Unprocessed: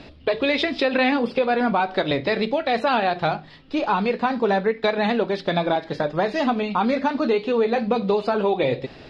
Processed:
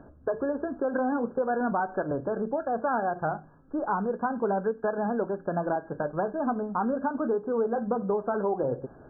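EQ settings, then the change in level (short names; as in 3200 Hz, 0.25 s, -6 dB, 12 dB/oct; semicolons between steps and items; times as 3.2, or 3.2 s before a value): brick-wall FIR low-pass 1700 Hz; -6.5 dB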